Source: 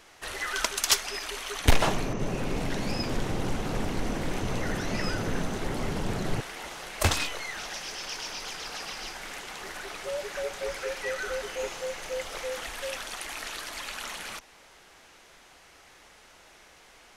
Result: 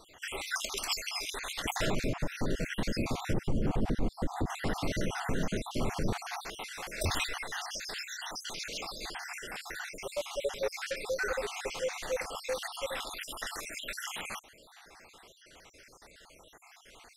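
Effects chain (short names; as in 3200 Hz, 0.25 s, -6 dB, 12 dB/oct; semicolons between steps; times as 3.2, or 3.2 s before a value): random spectral dropouts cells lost 57%; 3.33–4.5 tilt shelf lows +7.5 dB, about 850 Hz; limiter -23 dBFS, peak gain reduction 11 dB; gain +2 dB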